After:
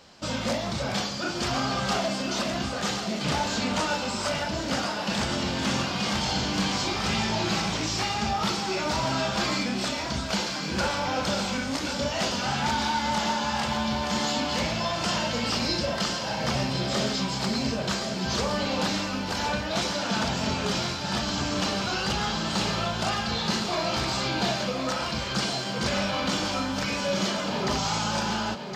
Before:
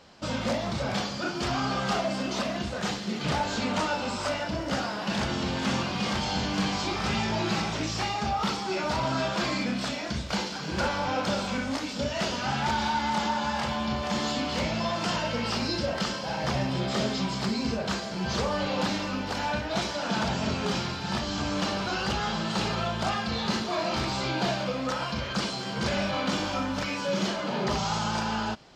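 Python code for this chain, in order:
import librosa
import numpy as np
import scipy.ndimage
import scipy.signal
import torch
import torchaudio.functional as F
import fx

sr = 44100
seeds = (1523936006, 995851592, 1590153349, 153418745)

p1 = fx.high_shelf(x, sr, hz=4200.0, db=7.0)
y = p1 + fx.echo_single(p1, sr, ms=1065, db=-8.0, dry=0)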